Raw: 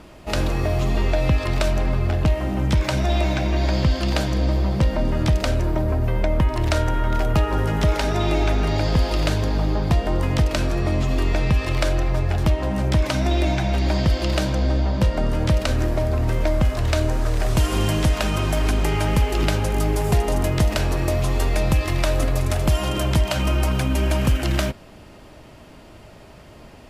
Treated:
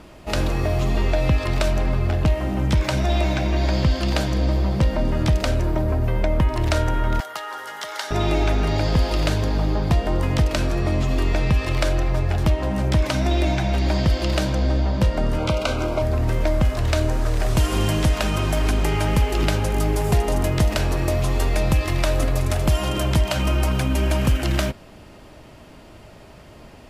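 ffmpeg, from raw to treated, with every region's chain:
-filter_complex "[0:a]asettb=1/sr,asplit=3[a][b][c];[a]atrim=end=7.204[d];[b]atrim=start=7.2:end=8.11,asetpts=PTS-STARTPTS,afade=t=in:d=0.004:c=qsin,afade=t=out:st=0.906:d=0.004:c=qsin,highpass=1.1k,equalizer=f=2.5k:w=7.9:g=-12.5[e];[c]atrim=start=8.106[f];[d][e]acrossfade=d=0.004:c1=hsin:c2=qsin[g];[g][f]acrossfade=d=0.004:c1=qsin:c2=hsin,asettb=1/sr,asplit=3[h][i][j];[h]atrim=end=15.384[k];[i]atrim=start=15.38:end=16.02,asetpts=PTS-STARTPTS,afade=t=in:d=0.004:c=qsin,afade=t=out:st=0.636:d=0.004:c=qsin,asplit=2[l][m];[m]highpass=f=720:p=1,volume=11dB,asoftclip=type=tanh:threshold=-8.5dB[n];[l][n]amix=inputs=2:normalize=0,lowpass=f=3k:p=1,volume=-6dB,asuperstop=centerf=1800:order=8:qfactor=4.1[o];[j]atrim=start=16.016[p];[k][o]acrossfade=d=0.004:c1=hsin:c2=qsin[q];[q][p]acrossfade=d=0.004:c1=qsin:c2=hsin"

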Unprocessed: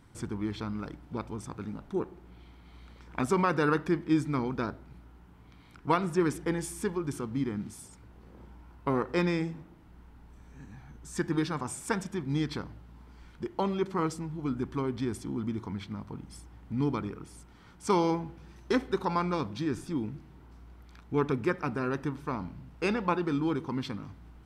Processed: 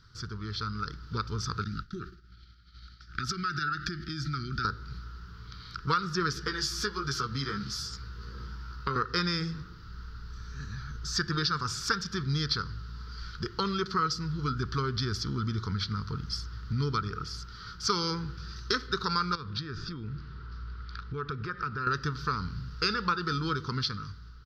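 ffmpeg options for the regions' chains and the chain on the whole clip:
-filter_complex "[0:a]asettb=1/sr,asplit=3[a][b][c];[a]atrim=end=1.644[d];[b]atrim=start=1.64:end=4.65,asetpts=PTS-STARTPTS,afade=t=in:d=0.004:c=qsin,afade=t=out:st=3.006:d=0.004:c=qsin,agate=range=-33dB:threshold=-43dB:ratio=3:release=100:detection=peak,acompressor=threshold=-34dB:ratio=10:attack=3.2:release=140:knee=1:detection=peak,asuperstop=centerf=690:order=12:qfactor=0.78[e];[c]atrim=start=4.646[f];[d][e]acrossfade=d=0.004:c1=hsin:c2=qsin[g];[g][f]acrossfade=d=0.004:c1=qsin:c2=hsin,asettb=1/sr,asplit=3[h][i][j];[h]atrim=end=6.354[k];[i]atrim=start=6.35:end=8.96,asetpts=PTS-STARTPTS,afade=t=in:d=0.004:c=qsin,afade=t=out:st=2.606:d=0.004:c=qsin,asplit=2[l][m];[m]adelay=15,volume=-3.5dB[n];[l][n]amix=inputs=2:normalize=0,atrim=end_sample=115101,acrossover=split=94|370[o][p][q];[o]acompressor=threshold=-53dB:ratio=4[r];[p]acompressor=threshold=-40dB:ratio=4[s];[q]acompressor=threshold=-33dB:ratio=4[t];[r][s][t]amix=inputs=3:normalize=0[u];[j]atrim=start=8.956[v];[k][u]acrossfade=d=0.004:c1=hsin:c2=qsin[w];[w][v]acrossfade=d=0.004:c1=qsin:c2=hsin,asettb=1/sr,asplit=3[x][y][z];[x]atrim=end=19.354[aa];[y]atrim=start=19.35:end=21.87,asetpts=PTS-STARTPTS,afade=t=in:d=0.004:c=qsin,afade=t=out:st=2.516:d=0.004:c=qsin,lowpass=3.2k,acompressor=threshold=-41dB:ratio=3:attack=3.2:release=140:knee=1:detection=peak[ab];[z]atrim=start=21.866[ac];[aa][ab]acrossfade=d=0.004:c1=hsin:c2=qsin[ad];[ad][ac]acrossfade=d=0.004:c1=qsin:c2=hsin,dynaudnorm=f=290:g=7:m=10dB,firequalizer=gain_entry='entry(110,0);entry(290,-17);entry(440,-6);entry(660,-30);entry(1300,8);entry(2200,-9);entry(4700,15);entry(8700,-22);entry(13000,-9)':delay=0.05:min_phase=1,acompressor=threshold=-30dB:ratio=2.5,volume=1.5dB"

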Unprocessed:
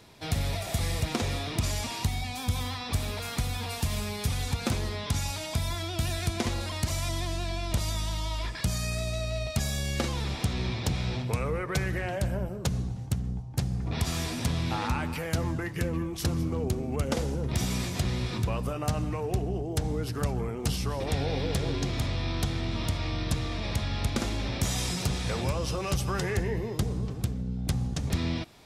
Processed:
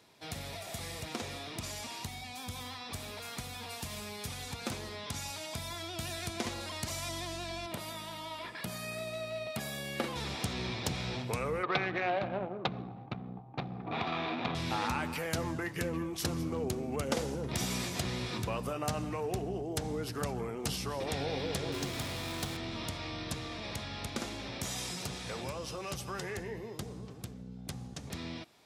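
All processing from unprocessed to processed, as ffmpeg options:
-filter_complex "[0:a]asettb=1/sr,asplit=3[a][b][c];[a]atrim=end=7.664[d];[b]atrim=start=7.66:end=10.16,asetpts=PTS-STARTPTS,afade=t=in:d=0.004:c=qsin,afade=t=out:st=2.496:d=0.004:c=qsin,highpass=150,equalizer=f=6.3k:w=1.1:g=-11.5[e];[c]atrim=start=10.156[f];[d][e]acrossfade=d=0.004:c1=hsin:c2=qsin[g];[g][f]acrossfade=d=0.004:c1=qsin:c2=hsin,asettb=1/sr,asplit=3[h][i][j];[h]atrim=end=11.634[k];[i]atrim=start=11.63:end=14.55,asetpts=PTS-STARTPTS,afade=t=in:d=0.004:c=qsin,afade=t=out:st=2.916:d=0.004:c=qsin,adynamicsmooth=sensitivity=4:basefreq=960,highpass=150,equalizer=f=330:t=q:w=4:g=3,equalizer=f=760:t=q:w=4:g=9,equalizer=f=1.2k:t=q:w=4:g=8,equalizer=f=2.4k:t=q:w=4:g=9,equalizer=f=3.7k:t=q:w=4:g=10,lowpass=f=4.9k:w=0.5412,lowpass=f=4.9k:w=1.3066[l];[j]atrim=start=14.546[m];[k][l]acrossfade=d=0.004:c1=hsin:c2=qsin[n];[n][m]acrossfade=d=0.004:c1=qsin:c2=hsin,asettb=1/sr,asplit=3[o][p][q];[o]atrim=end=21.724[r];[p]atrim=start=21.72:end=22.57,asetpts=PTS-STARTPTS,afade=t=in:d=0.004:c=qsin,afade=t=out:st=0.846:d=0.004:c=qsin,highpass=40,acrusher=bits=5:mix=0:aa=0.5[s];[q]atrim=start=22.566[t];[r][s]acrossfade=d=0.004:c1=hsin:c2=qsin[u];[u][t]acrossfade=d=0.004:c1=qsin:c2=hsin,highpass=f=250:p=1,dynaudnorm=f=830:g=17:m=6dB,volume=-7dB"

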